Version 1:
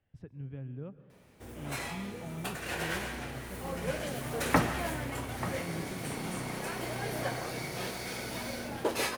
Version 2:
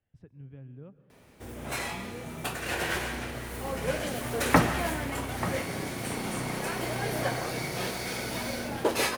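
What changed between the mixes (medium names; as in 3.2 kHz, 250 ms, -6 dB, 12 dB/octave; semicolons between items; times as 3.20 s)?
speech -4.5 dB; background +4.5 dB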